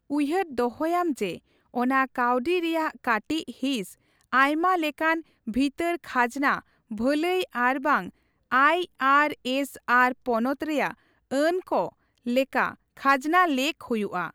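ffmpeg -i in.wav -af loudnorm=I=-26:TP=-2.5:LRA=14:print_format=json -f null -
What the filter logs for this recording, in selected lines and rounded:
"input_i" : "-25.1",
"input_tp" : "-8.2",
"input_lra" : "2.7",
"input_thresh" : "-35.4",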